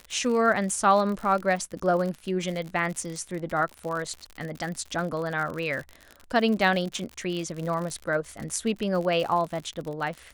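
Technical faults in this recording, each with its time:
crackle 69/s -31 dBFS

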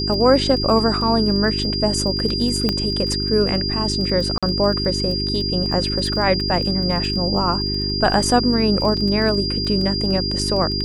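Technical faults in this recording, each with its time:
crackle 18/s -26 dBFS
hum 50 Hz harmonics 8 -25 dBFS
tone 4800 Hz -23 dBFS
2.69 pop -6 dBFS
4.38–4.43 gap 46 ms
8.97 gap 4.5 ms

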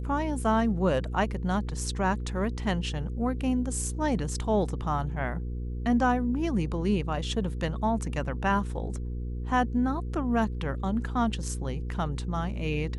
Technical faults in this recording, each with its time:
hum 60 Hz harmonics 8 -33 dBFS

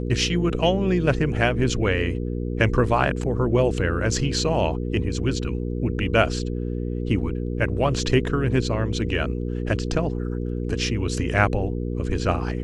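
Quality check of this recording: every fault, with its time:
hum 60 Hz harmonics 8 -27 dBFS

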